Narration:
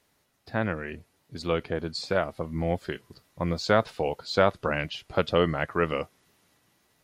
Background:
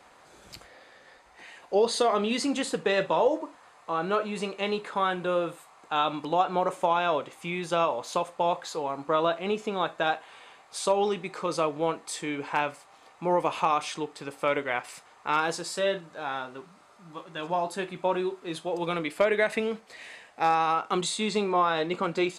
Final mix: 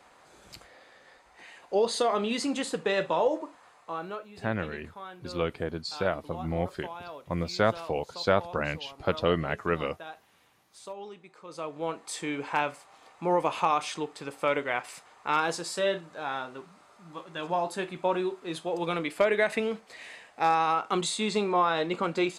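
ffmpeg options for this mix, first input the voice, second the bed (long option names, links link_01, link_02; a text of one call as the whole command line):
ffmpeg -i stem1.wav -i stem2.wav -filter_complex "[0:a]adelay=3900,volume=-2.5dB[link_01];[1:a]volume=14dB,afade=type=out:start_time=3.7:duration=0.55:silence=0.188365,afade=type=in:start_time=11.46:duration=0.77:silence=0.158489[link_02];[link_01][link_02]amix=inputs=2:normalize=0" out.wav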